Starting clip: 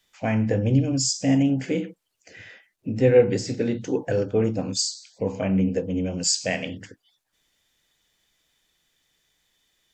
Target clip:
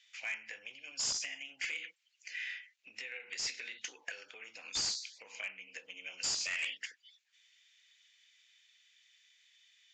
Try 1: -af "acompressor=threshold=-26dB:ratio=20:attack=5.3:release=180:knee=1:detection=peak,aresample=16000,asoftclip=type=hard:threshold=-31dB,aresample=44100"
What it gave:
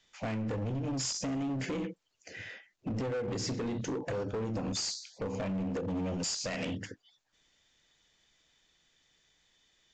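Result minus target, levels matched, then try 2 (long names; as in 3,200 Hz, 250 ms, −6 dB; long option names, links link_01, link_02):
2,000 Hz band −9.0 dB
-af "acompressor=threshold=-26dB:ratio=20:attack=5.3:release=180:knee=1:detection=peak,highpass=frequency=2300:width_type=q:width=2.4,aresample=16000,asoftclip=type=hard:threshold=-31dB,aresample=44100"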